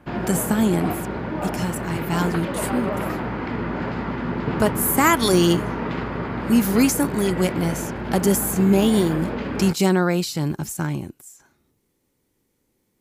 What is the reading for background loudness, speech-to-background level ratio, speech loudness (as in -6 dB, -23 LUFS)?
-27.5 LUFS, 6.0 dB, -21.5 LUFS